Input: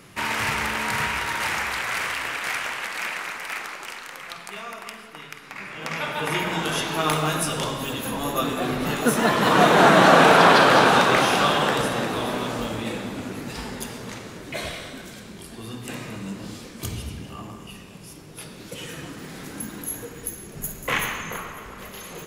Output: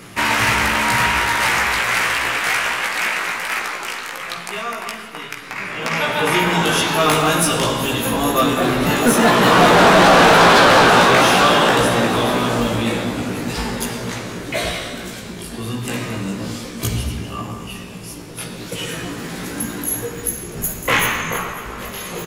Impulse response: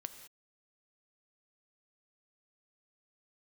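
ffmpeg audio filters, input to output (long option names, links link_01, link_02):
-filter_complex "[0:a]asplit=2[link_01][link_02];[link_02]adelay=17,volume=-4dB[link_03];[link_01][link_03]amix=inputs=2:normalize=0,asoftclip=type=tanh:threshold=-15dB,volume=8dB"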